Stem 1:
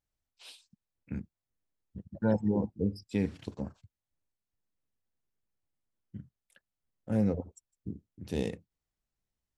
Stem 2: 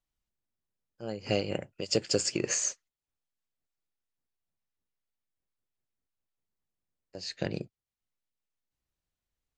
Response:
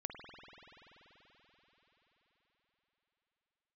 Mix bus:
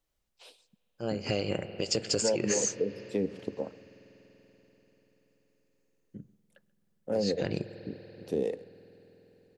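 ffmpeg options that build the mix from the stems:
-filter_complex "[0:a]highpass=140,equalizer=f=480:w=1.1:g=14.5,acrossover=split=430[a][b];[a]aeval=exprs='val(0)*(1-0.7/2+0.7/2*cos(2*PI*3.7*n/s))':c=same[c];[b]aeval=exprs='val(0)*(1-0.7/2-0.7/2*cos(2*PI*3.7*n/s))':c=same[d];[c][d]amix=inputs=2:normalize=0,volume=-1dB,asplit=3[e][f][g];[f]volume=-18dB[h];[g]volume=-22.5dB[i];[1:a]alimiter=limit=-19dB:level=0:latency=1:release=25,volume=3dB,asplit=2[j][k];[k]volume=-6.5dB[l];[2:a]atrim=start_sample=2205[m];[h][l]amix=inputs=2:normalize=0[n];[n][m]afir=irnorm=-1:irlink=0[o];[i]aecho=0:1:134:1[p];[e][j][o][p]amix=inputs=4:normalize=0,acompressor=threshold=-26dB:ratio=3"

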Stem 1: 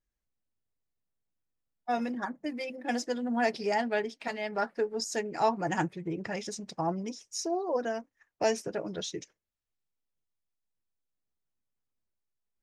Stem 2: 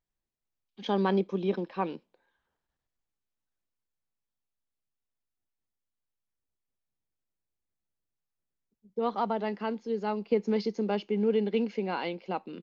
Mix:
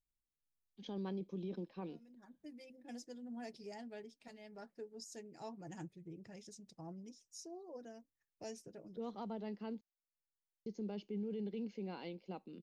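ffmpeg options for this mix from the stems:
-filter_complex "[0:a]volume=-12.5dB[a];[1:a]volume=-6dB,asplit=3[b][c][d];[b]atrim=end=9.81,asetpts=PTS-STARTPTS,afade=t=out:st=9.806:d=0.004:c=hsin[e];[c]atrim=start=9.81:end=10.66,asetpts=PTS-STARTPTS,volume=0[f];[d]atrim=start=10.66,asetpts=PTS-STARTPTS,afade=t=in:d=0.004:c=hsin[g];[e][f][g]concat=n=3:v=0:a=1,asplit=2[h][i];[i]apad=whole_len=556542[j];[a][j]sidechaincompress=threshold=-58dB:ratio=3:attack=12:release=306[k];[k][h]amix=inputs=2:normalize=0,equalizer=f=1.3k:w=0.4:g=-14,alimiter=level_in=11dB:limit=-24dB:level=0:latency=1:release=15,volume=-11dB"

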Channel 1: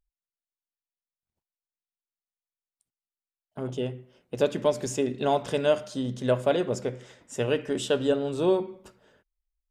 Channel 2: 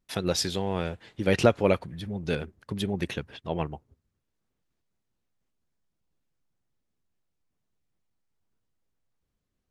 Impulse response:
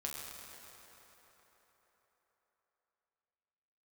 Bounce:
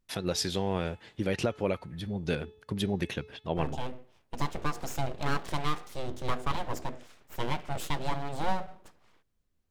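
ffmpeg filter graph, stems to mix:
-filter_complex "[0:a]lowshelf=f=78:g=10.5,aeval=exprs='abs(val(0))':c=same,volume=-3dB[a];[1:a]bandreject=f=431:t=h:w=4,bandreject=f=862:t=h:w=4,bandreject=f=1.293k:t=h:w=4,bandreject=f=1.724k:t=h:w=4,bandreject=f=2.155k:t=h:w=4,bandreject=f=2.586k:t=h:w=4,bandreject=f=3.017k:t=h:w=4,bandreject=f=3.448k:t=h:w=4,bandreject=f=3.879k:t=h:w=4,bandreject=f=4.31k:t=h:w=4,bandreject=f=4.741k:t=h:w=4,bandreject=f=5.172k:t=h:w=4,bandreject=f=5.603k:t=h:w=4,bandreject=f=6.034k:t=h:w=4,bandreject=f=6.465k:t=h:w=4,volume=-0.5dB[b];[a][b]amix=inputs=2:normalize=0,alimiter=limit=-16dB:level=0:latency=1:release=267"

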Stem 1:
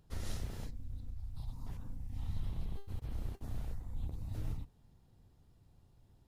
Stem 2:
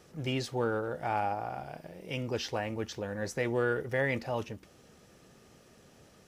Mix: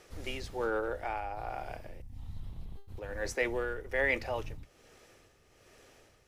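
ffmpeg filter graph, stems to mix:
-filter_complex "[0:a]volume=-4.5dB[a];[1:a]highpass=f=300:w=0.5412,highpass=f=300:w=1.3066,equalizer=f=2.2k:t=o:w=0.69:g=5,tremolo=f=1.2:d=0.65,volume=1dB,asplit=3[b][c][d];[b]atrim=end=2.02,asetpts=PTS-STARTPTS,afade=t=out:st=2.016:d=0.004:c=hsin[e];[c]atrim=start=2.02:end=2.97,asetpts=PTS-STARTPTS,volume=0[f];[d]atrim=start=2.97,asetpts=PTS-STARTPTS,afade=t=in:d=0.004:c=hsin[g];[e][f][g]concat=n=3:v=0:a=1[h];[a][h]amix=inputs=2:normalize=0"

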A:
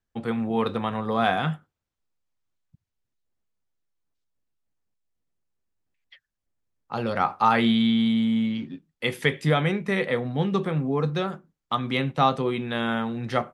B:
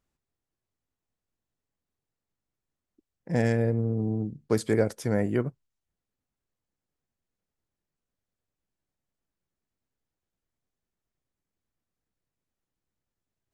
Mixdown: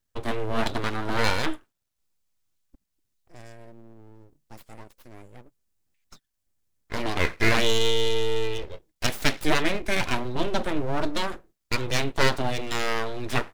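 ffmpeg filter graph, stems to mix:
-filter_complex "[0:a]lowshelf=f=210:g=4.5,volume=0dB[a];[1:a]volume=-19.5dB[b];[a][b]amix=inputs=2:normalize=0,highshelf=f=3.6k:g=11.5,aeval=exprs='abs(val(0))':c=same"

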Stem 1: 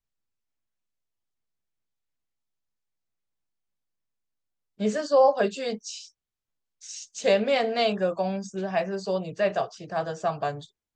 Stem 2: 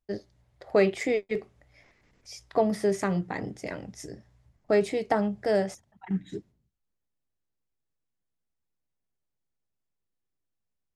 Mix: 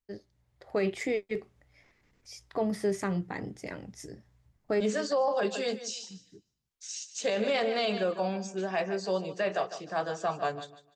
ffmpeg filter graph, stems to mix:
-filter_complex "[0:a]highpass=220,volume=-5dB,asplit=3[a][b][c];[b]volume=-13.5dB[d];[1:a]volume=-8dB[e];[c]apad=whole_len=483284[f];[e][f]sidechaincompress=threshold=-50dB:ratio=5:attack=16:release=1100[g];[d]aecho=0:1:150|300|450|600:1|0.23|0.0529|0.0122[h];[a][g][h]amix=inputs=3:normalize=0,equalizer=f=640:w=2.7:g=-3.5,dynaudnorm=f=140:g=7:m=5dB,alimiter=limit=-20dB:level=0:latency=1:release=12"

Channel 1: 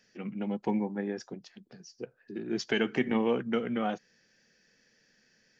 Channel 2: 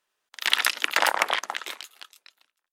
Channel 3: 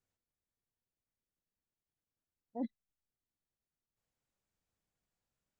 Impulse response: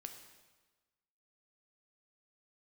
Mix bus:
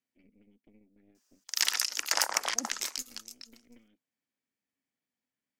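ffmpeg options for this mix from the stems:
-filter_complex "[0:a]acompressor=threshold=-37dB:ratio=3,asplit=3[a][b][c];[a]bandpass=f=270:t=q:w=8,volume=0dB[d];[b]bandpass=f=2.29k:t=q:w=8,volume=-6dB[e];[c]bandpass=f=3.01k:t=q:w=8,volume=-9dB[f];[d][e][f]amix=inputs=3:normalize=0,aeval=exprs='0.0188*(cos(1*acos(clip(val(0)/0.0188,-1,1)))-cos(1*PI/2))+0.00299*(cos(3*acos(clip(val(0)/0.0188,-1,1)))-cos(3*PI/2))+0.00299*(cos(4*acos(clip(val(0)/0.0188,-1,1)))-cos(4*PI/2))':c=same,volume=-8.5dB[g];[1:a]highshelf=f=7.3k:t=q:w=1.5:g=-12.5,aexciter=amount=15:drive=3.9:freq=5.4k,adelay=1150,volume=-6dB[h];[2:a]highpass=160,volume=-4.5dB[i];[g][h][i]amix=inputs=3:normalize=0,alimiter=limit=-8dB:level=0:latency=1:release=317"

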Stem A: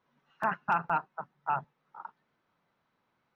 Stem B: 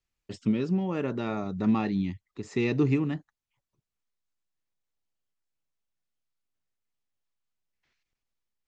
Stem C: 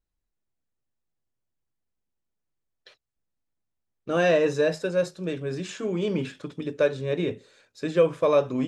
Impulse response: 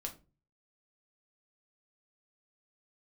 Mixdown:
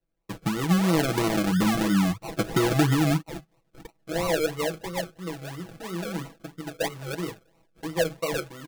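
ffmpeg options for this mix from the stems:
-filter_complex "[0:a]lowshelf=f=480:g=-7.5,adelay=1800,volume=-9dB[a];[1:a]acompressor=threshold=-31dB:ratio=10,volume=2dB,asplit=2[b][c];[2:a]volume=-16.5dB[d];[c]apad=whole_len=227382[e];[a][e]sidechaincompress=threshold=-54dB:ratio=12:attack=41:release=181[f];[f][b][d]amix=inputs=3:normalize=0,acrusher=samples=37:mix=1:aa=0.000001:lfo=1:lforange=22.2:lforate=3,aecho=1:1:6.1:0.81,dynaudnorm=f=220:g=5:m=8.5dB"

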